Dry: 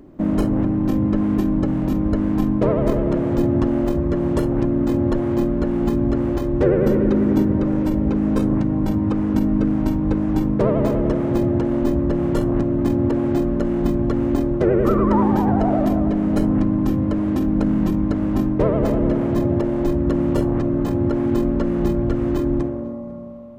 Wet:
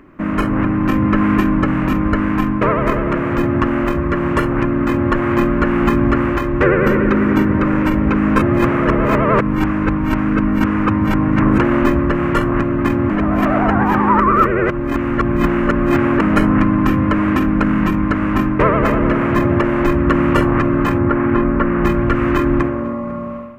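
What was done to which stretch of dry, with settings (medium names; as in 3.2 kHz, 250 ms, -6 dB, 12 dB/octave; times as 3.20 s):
8.42–11.58 s: reverse
13.10–16.21 s: reverse
20.98–21.85 s: low-pass 2 kHz
whole clip: high-order bell 1.7 kHz +15 dB; level rider; trim -1 dB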